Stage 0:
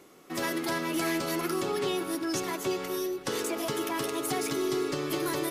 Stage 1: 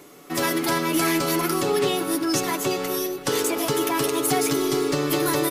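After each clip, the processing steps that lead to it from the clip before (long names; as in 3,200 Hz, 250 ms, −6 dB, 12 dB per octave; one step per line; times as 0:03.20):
high-shelf EQ 11,000 Hz +6 dB
comb filter 6.9 ms, depth 40%
level +7 dB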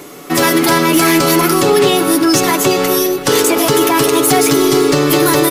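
in parallel at +3 dB: brickwall limiter −18 dBFS, peak gain reduction 9 dB
on the sum: gain into a clipping stage and back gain 9.5 dB
level +6 dB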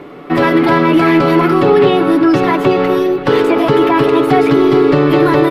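high-frequency loss of the air 440 metres
level +3 dB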